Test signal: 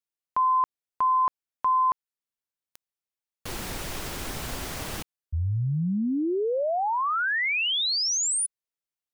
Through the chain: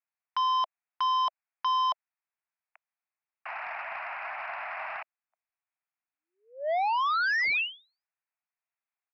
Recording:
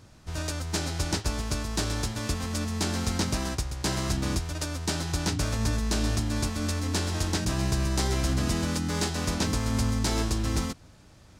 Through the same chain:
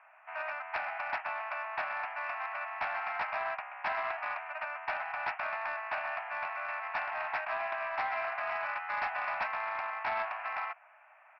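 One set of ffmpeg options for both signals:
ffmpeg -i in.wav -af "asuperpass=centerf=1300:order=20:qfactor=0.65,aresample=11025,asoftclip=type=tanh:threshold=-29dB,aresample=44100,volume=4.5dB" out.wav

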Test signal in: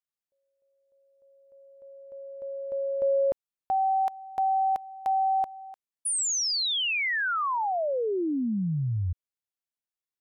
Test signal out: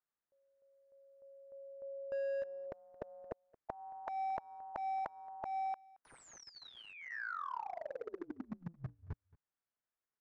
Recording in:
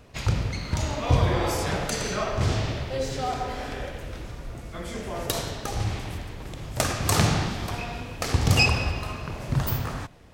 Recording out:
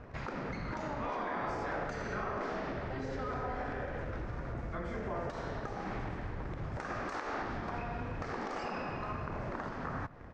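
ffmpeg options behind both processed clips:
ffmpeg -i in.wav -filter_complex "[0:a]afftfilt=real='re*lt(hypot(re,im),0.224)':imag='im*lt(hypot(re,im),0.224)':win_size=1024:overlap=0.75,asplit=2[link_01][link_02];[link_02]acrusher=bits=6:mix=0:aa=0.000001,volume=-6dB[link_03];[link_01][link_03]amix=inputs=2:normalize=0,acompressor=threshold=-36dB:ratio=3:attack=0.37:release=182:detection=rms,lowpass=frequency=5900:width=0.5412,lowpass=frequency=5900:width=1.3066,highshelf=frequency=2300:width_type=q:width=1.5:gain=-11.5,asplit=2[link_04][link_05];[link_05]aecho=0:1:223:0.0668[link_06];[link_04][link_06]amix=inputs=2:normalize=0,volume=1.5dB" out.wav

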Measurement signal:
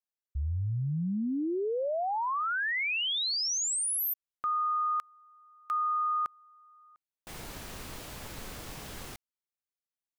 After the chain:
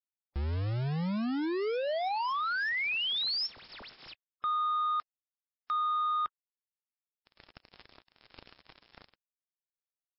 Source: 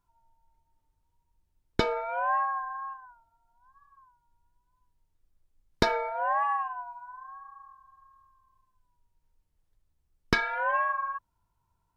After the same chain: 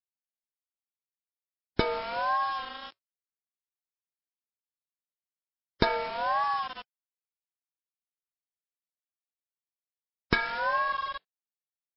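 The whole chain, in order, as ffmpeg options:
ffmpeg -i in.wav -af "aeval=exprs='val(0)*gte(abs(val(0)),0.0211)':channel_layout=same" -ar 12000 -c:a libmp3lame -b:a 24k out.mp3

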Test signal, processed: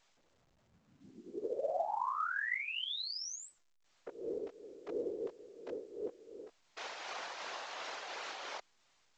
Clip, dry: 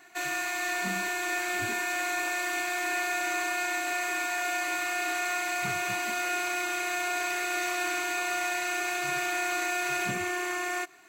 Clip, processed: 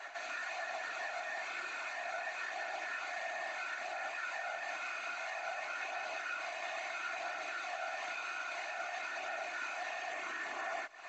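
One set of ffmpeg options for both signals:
ffmpeg -i in.wav -af "acompressor=threshold=-42dB:ratio=3,highpass=frequency=560:width=0.5412,highpass=frequency=560:width=1.3066,acontrast=42,flanger=delay=18.5:depth=3.1:speed=0.3,tremolo=f=2.8:d=0.5,alimiter=level_in=14.5dB:limit=-24dB:level=0:latency=1:release=16,volume=-14.5dB,afftfilt=real='hypot(re,im)*cos(2*PI*random(0))':imag='hypot(re,im)*sin(2*PI*random(1))':win_size=512:overlap=0.75,lowpass=4400,equalizer=frequency=2600:width_type=o:width=2.2:gain=-3,volume=14.5dB" -ar 16000 -c:a pcm_alaw out.wav

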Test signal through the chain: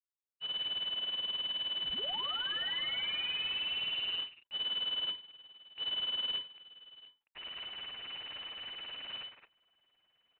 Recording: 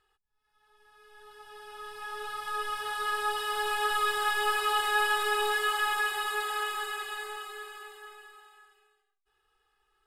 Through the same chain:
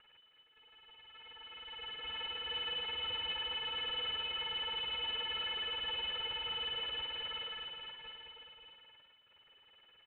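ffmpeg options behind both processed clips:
ffmpeg -i in.wav -filter_complex "[0:a]alimiter=level_in=3.5dB:limit=-24dB:level=0:latency=1:release=19,volume=-3.5dB,areverse,acompressor=mode=upward:threshold=-50dB:ratio=2.5,areverse,aeval=exprs='abs(val(0))':channel_layout=same,tremolo=f=19:d=0.93,aeval=exprs='0.0422*(cos(1*acos(clip(val(0)/0.0422,-1,1)))-cos(1*PI/2))+0.00299*(cos(5*acos(clip(val(0)/0.0422,-1,1)))-cos(5*PI/2))':channel_layout=same,asplit=2[link_01][link_02];[link_02]adelay=220,highpass=300,lowpass=3400,asoftclip=type=hard:threshold=-36dB,volume=-7dB[link_03];[link_01][link_03]amix=inputs=2:normalize=0,lowpass=frequency=2600:width_type=q:width=0.5098,lowpass=frequency=2600:width_type=q:width=0.6013,lowpass=frequency=2600:width_type=q:width=0.9,lowpass=frequency=2600:width_type=q:width=2.563,afreqshift=-3000" -ar 8000 -c:a adpcm_ima_wav out.wav

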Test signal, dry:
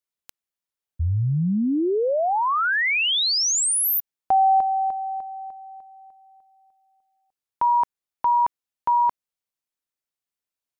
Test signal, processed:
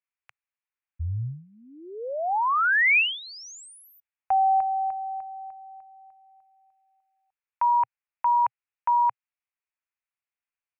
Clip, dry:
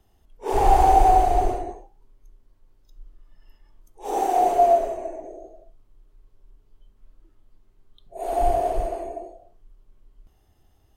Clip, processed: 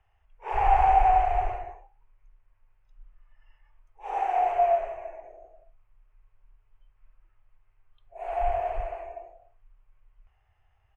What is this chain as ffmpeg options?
ffmpeg -i in.wav -af "firequalizer=gain_entry='entry(120,0);entry(180,-27);entry(480,-5);entry(810,4);entry(1300,6);entry(2500,10);entry(3700,-13);entry(6600,-15);entry(13000,-28)':delay=0.05:min_phase=1,volume=-6.5dB" out.wav

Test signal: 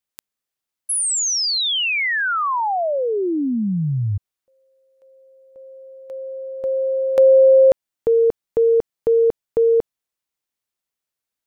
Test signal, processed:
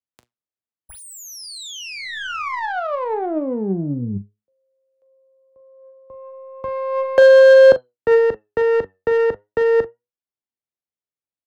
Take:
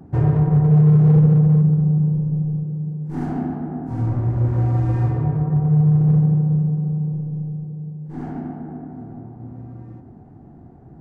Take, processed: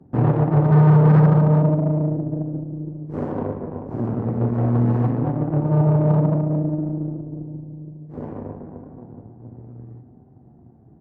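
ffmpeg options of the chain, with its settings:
ffmpeg -i in.wav -filter_complex "[0:a]aeval=exprs='0.447*(cos(1*acos(clip(val(0)/0.447,-1,1)))-cos(1*PI/2))+0.1*(cos(3*acos(clip(val(0)/0.447,-1,1)))-cos(3*PI/2))+0.0224*(cos(4*acos(clip(val(0)/0.447,-1,1)))-cos(4*PI/2))+0.0447*(cos(8*acos(clip(val(0)/0.447,-1,1)))-cos(8*PI/2))':channel_layout=same,highpass=53,acrossover=split=110|850[link_01][link_02][link_03];[link_01]acompressor=threshold=-45dB:ratio=6[link_04];[link_04][link_02][link_03]amix=inputs=3:normalize=0,aemphasis=mode=reproduction:type=50kf,flanger=delay=7.7:depth=3:regen=75:speed=0.39:shape=triangular,asplit=2[link_05][link_06];[link_06]adynamicsmooth=sensitivity=2:basefreq=1000,volume=0dB[link_07];[link_05][link_07]amix=inputs=2:normalize=0,asplit=2[link_08][link_09];[link_09]adelay=41,volume=-12dB[link_10];[link_08][link_10]amix=inputs=2:normalize=0,volume=2.5dB" out.wav

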